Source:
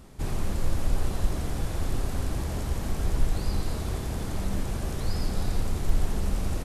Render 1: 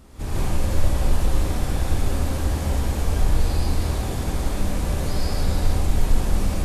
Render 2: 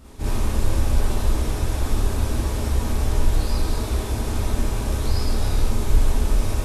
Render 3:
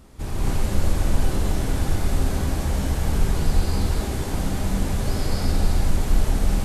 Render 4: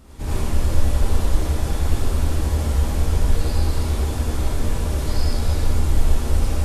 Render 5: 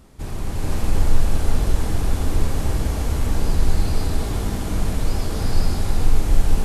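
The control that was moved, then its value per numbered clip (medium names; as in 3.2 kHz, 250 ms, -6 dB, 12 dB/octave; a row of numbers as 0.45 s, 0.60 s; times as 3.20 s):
gated-style reverb, gate: 190 ms, 80 ms, 290 ms, 130 ms, 530 ms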